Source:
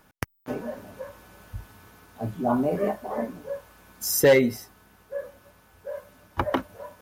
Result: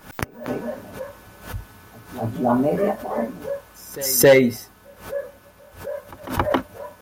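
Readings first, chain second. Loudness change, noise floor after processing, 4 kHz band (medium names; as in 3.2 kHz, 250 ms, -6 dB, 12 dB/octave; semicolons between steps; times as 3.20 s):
+5.0 dB, -50 dBFS, +5.5 dB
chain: pre-echo 270 ms -20 dB; swell ahead of each attack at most 130 dB/s; trim +4.5 dB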